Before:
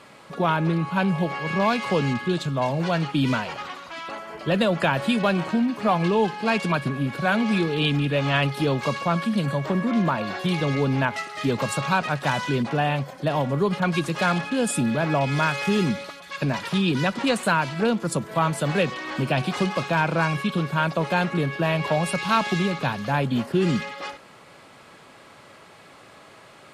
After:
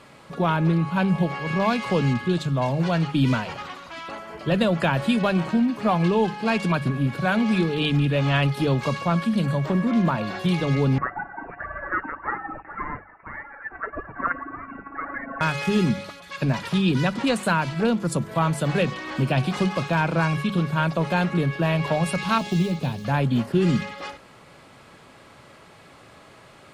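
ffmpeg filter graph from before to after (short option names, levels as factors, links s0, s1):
-filter_complex "[0:a]asettb=1/sr,asplit=3[s0][s1][s2];[s0]atrim=end=10.984[s3];[s1]atrim=start=10.98:end=15.41,asetpts=PTS-STARTPTS,afade=t=in:d=0.004:c=qsin,afade=t=out:st=4.426:d=0.004:c=qsin,highpass=f=1200:w=0.5412,highpass=f=1200:w=1.3066,aphaser=in_gain=1:out_gain=1:delay=2.9:decay=0.63:speed=1.8:type=triangular,lowpass=f=2400:t=q:w=0.5098,lowpass=f=2400:t=q:w=0.6013,lowpass=f=2400:t=q:w=0.9,lowpass=f=2400:t=q:w=2.563,afreqshift=-2800[s4];[s2]atrim=start=15.406[s5];[s3][s4]acrossfade=d=0.004:c1=hsin:c2=qsin[s6];[s6][s5]acrossfade=d=0.004:c1=qsin:c2=hsin,asettb=1/sr,asplit=3[s7][s8][s9];[s7]atrim=end=22.384[s10];[s8]atrim=start=22.38:end=23.05,asetpts=PTS-STARTPTS,afade=t=in:d=0.004:c=qsin,afade=t=out:st=0.666:d=0.004:c=qsin,equalizer=f=1400:t=o:w=1.5:g=-13,acrusher=bits=8:mode=log:mix=0:aa=0.000001,asplit=2[s11][s12];[s12]adelay=12,volume=0.282[s13];[s11][s13]amix=inputs=2:normalize=0,atrim=end_sample=29547[s14];[s9]atrim=start=23.046[s15];[s10][s14]acrossfade=d=0.004:c1=hsin:c2=qsin[s16];[s16][s15]acrossfade=d=0.004:c1=qsin:c2=hsin,lowshelf=f=150:g=10.5,bandreject=f=50:t=h:w=6,bandreject=f=100:t=h:w=6,bandreject=f=150:t=h:w=6,bandreject=f=200:t=h:w=6,volume=0.841"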